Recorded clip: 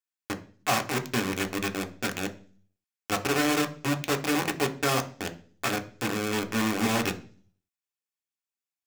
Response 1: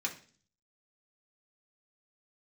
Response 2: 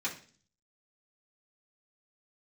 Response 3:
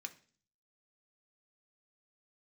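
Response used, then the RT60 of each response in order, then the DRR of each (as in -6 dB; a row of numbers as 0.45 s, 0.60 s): 3; 0.45 s, 0.40 s, 0.45 s; -2.0 dB, -8.0 dB, 5.0 dB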